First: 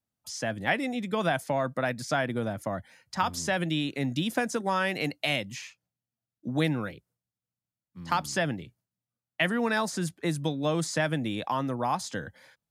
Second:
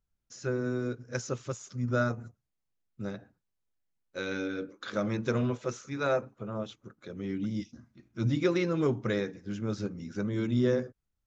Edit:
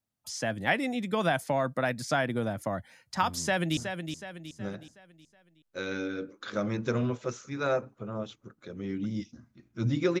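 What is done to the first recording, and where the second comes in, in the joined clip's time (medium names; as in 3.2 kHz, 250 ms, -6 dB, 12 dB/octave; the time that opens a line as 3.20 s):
first
3.33–3.77 s: echo throw 370 ms, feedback 45%, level -7.5 dB
3.77 s: go over to second from 2.17 s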